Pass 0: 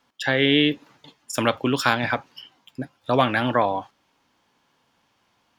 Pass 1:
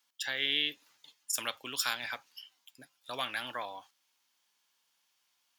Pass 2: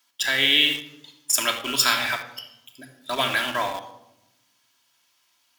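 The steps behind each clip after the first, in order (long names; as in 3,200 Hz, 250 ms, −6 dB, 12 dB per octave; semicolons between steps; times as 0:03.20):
first-order pre-emphasis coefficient 0.97
convolution reverb RT60 0.90 s, pre-delay 3 ms, DRR 1.5 dB; in parallel at −8 dB: bit-depth reduction 6 bits, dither none; on the sum: level +7.5 dB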